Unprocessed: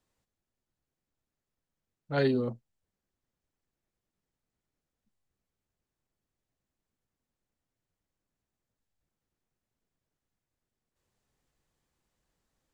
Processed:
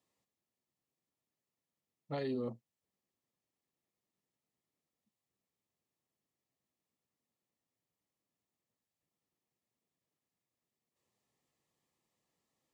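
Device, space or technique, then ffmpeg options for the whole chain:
PA system with an anti-feedback notch: -af "highpass=140,asuperstop=centerf=1500:order=4:qfactor=5.4,alimiter=level_in=1.41:limit=0.0631:level=0:latency=1:release=74,volume=0.708,volume=0.75"

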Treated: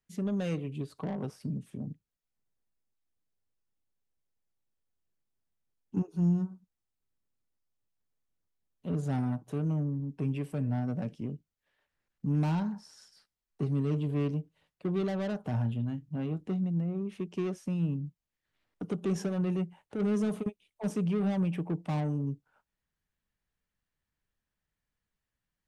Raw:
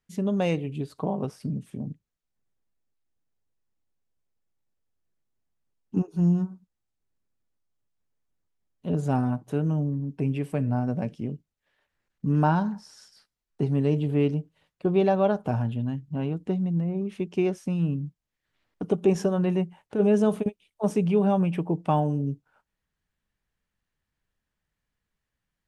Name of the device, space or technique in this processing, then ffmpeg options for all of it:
one-band saturation: -filter_complex "[0:a]acrossover=split=280|3500[s0][s1][s2];[s1]asoftclip=type=tanh:threshold=0.0282[s3];[s0][s3][s2]amix=inputs=3:normalize=0,asettb=1/sr,asplit=3[s4][s5][s6];[s4]atrim=end=15.524[s7];[s5]atrim=start=15.52:end=16.64,asetpts=PTS-STARTPTS,afade=t=in:d=0.004:c=qsin,afade=t=out:st=1.116:d=0.004:c=qsin,asplit=2[s8][s9];[s9]adelay=26,volume=0.251[s10];[s8][s10]amix=inputs=2:normalize=0,atrim=end_sample=49392[s11];[s6]atrim=start=16.636[s12];[s7][s11]acrossfade=d=0.004:c1=hsin:c2=qsin[s13];[s13][s12]acrossfade=d=0.004:c1=qsin:c2=hsin,volume=0.596"

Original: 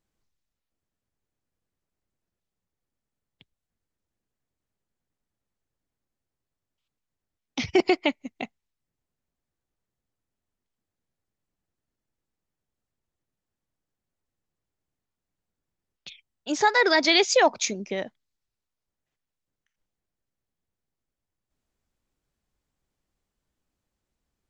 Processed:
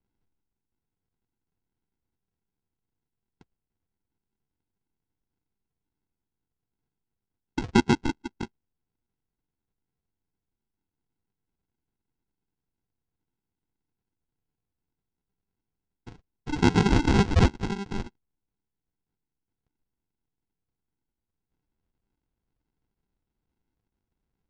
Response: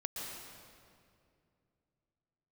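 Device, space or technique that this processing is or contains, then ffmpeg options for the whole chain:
crushed at another speed: -af "asetrate=88200,aresample=44100,acrusher=samples=37:mix=1:aa=0.000001,asetrate=22050,aresample=44100,lowpass=f=6300:w=0.5412,lowpass=f=6300:w=1.3066"

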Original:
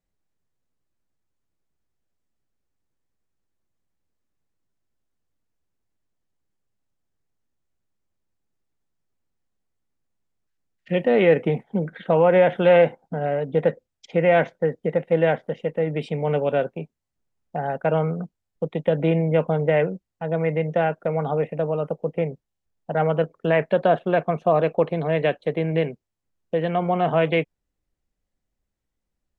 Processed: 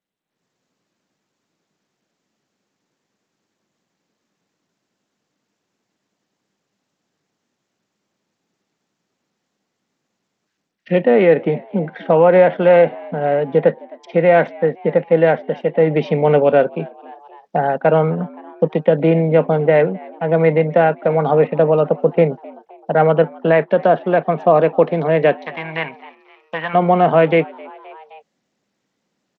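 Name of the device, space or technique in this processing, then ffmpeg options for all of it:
Bluetooth headset: -filter_complex "[0:a]acrossover=split=2600[s0][s1];[s1]acompressor=threshold=0.00282:ratio=4:attack=1:release=60[s2];[s0][s2]amix=inputs=2:normalize=0,asplit=3[s3][s4][s5];[s3]afade=t=out:st=25.41:d=0.02[s6];[s4]lowshelf=f=670:t=q:w=3:g=-14,afade=t=in:st=25.41:d=0.02,afade=t=out:st=26.73:d=0.02[s7];[s5]afade=t=in:st=26.73:d=0.02[s8];[s6][s7][s8]amix=inputs=3:normalize=0,asplit=4[s9][s10][s11][s12];[s10]adelay=261,afreqshift=100,volume=0.0631[s13];[s11]adelay=522,afreqshift=200,volume=0.0339[s14];[s12]adelay=783,afreqshift=300,volume=0.0184[s15];[s9][s13][s14][s15]amix=inputs=4:normalize=0,highpass=f=160:w=0.5412,highpass=f=160:w=1.3066,dynaudnorm=f=230:g=3:m=6.31,aresample=16000,aresample=44100,volume=0.891" -ar 32000 -c:a sbc -b:a 64k

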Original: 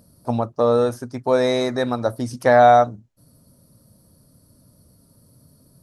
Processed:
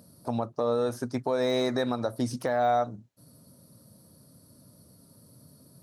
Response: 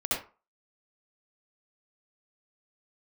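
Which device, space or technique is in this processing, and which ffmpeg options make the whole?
broadcast voice chain: -af "highpass=110,deesser=0.75,acompressor=threshold=0.112:ratio=4,equalizer=f=3900:t=o:w=0.26:g=3,alimiter=limit=0.15:level=0:latency=1:release=218"

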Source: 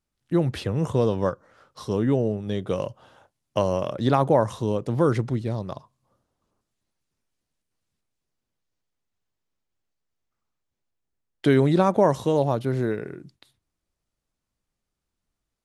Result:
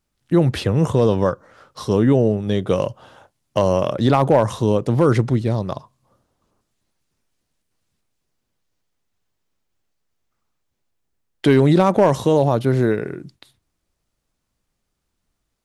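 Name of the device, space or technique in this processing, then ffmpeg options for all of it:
clipper into limiter: -af "asoftclip=type=hard:threshold=0.316,alimiter=limit=0.224:level=0:latency=1:release=16,volume=2.37"

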